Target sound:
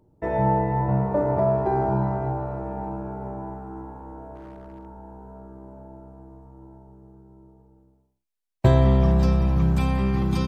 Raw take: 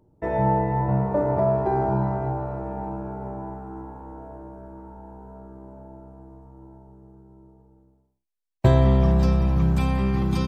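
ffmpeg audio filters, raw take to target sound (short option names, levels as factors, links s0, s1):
-filter_complex "[0:a]asplit=3[s0][s1][s2];[s0]afade=t=out:st=4.35:d=0.02[s3];[s1]aeval=exprs='0.0178*(abs(mod(val(0)/0.0178+3,4)-2)-1)':c=same,afade=t=in:st=4.35:d=0.02,afade=t=out:st=4.85:d=0.02[s4];[s2]afade=t=in:st=4.85:d=0.02[s5];[s3][s4][s5]amix=inputs=3:normalize=0"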